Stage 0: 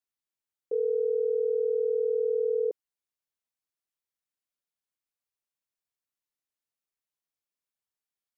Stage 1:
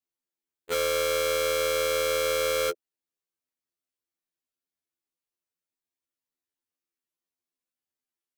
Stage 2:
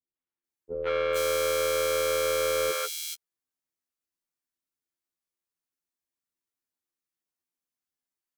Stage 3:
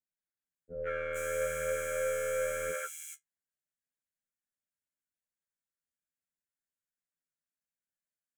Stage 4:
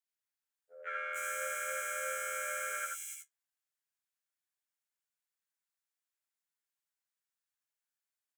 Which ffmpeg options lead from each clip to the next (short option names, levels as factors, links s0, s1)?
-af "equalizer=f=310:w=1.5:g=9.5,aeval=exprs='(mod(8.41*val(0)+1,2)-1)/8.41':c=same,afftfilt=real='re*2*eq(mod(b,4),0)':imag='im*2*eq(mod(b,4),0)':win_size=2048:overlap=0.75"
-filter_complex "[0:a]acrossover=split=540|3100[s0][s1][s2];[s1]adelay=150[s3];[s2]adelay=440[s4];[s0][s3][s4]amix=inputs=3:normalize=0"
-af "equalizer=f=180:w=1.3:g=-3,flanger=delay=9.3:depth=5:regen=48:speed=0.45:shape=sinusoidal,firequalizer=gain_entry='entry(110,0);entry(180,7);entry(380,-13);entry(580,2);entry(950,-25);entry(1500,4);entry(4400,-27);entry(6900,0);entry(13000,-8)':delay=0.05:min_phase=1"
-af "highpass=f=740:w=0.5412,highpass=f=740:w=1.3066,aecho=1:1:67|80:0.282|0.596"